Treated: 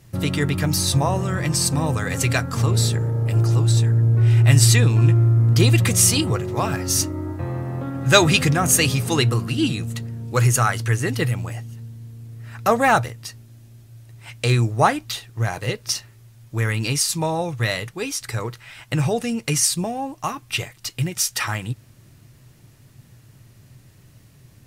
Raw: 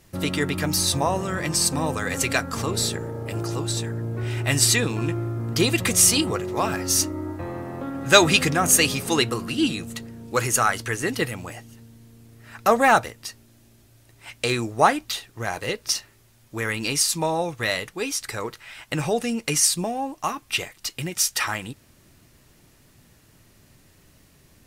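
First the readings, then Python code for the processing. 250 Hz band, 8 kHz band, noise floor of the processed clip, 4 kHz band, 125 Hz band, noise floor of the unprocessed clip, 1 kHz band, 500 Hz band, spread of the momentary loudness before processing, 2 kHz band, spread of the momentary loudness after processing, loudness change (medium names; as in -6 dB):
+2.5 dB, 0.0 dB, -51 dBFS, 0.0 dB, +12.0 dB, -56 dBFS, 0.0 dB, +0.5 dB, 15 LU, 0.0 dB, 14 LU, +3.0 dB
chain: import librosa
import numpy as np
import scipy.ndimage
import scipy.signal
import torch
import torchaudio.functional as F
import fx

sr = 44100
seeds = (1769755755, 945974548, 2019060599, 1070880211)

y = fx.peak_eq(x, sr, hz=120.0, db=14.5, octaves=0.65)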